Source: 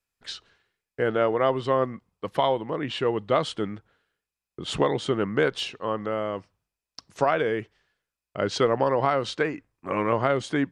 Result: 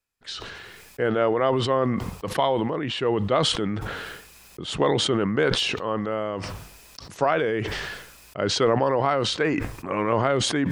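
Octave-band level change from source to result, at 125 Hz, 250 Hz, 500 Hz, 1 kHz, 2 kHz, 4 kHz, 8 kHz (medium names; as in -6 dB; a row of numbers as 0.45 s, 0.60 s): +4.5 dB, +3.5 dB, +1.0 dB, +1.0 dB, +2.5 dB, +7.0 dB, +9.5 dB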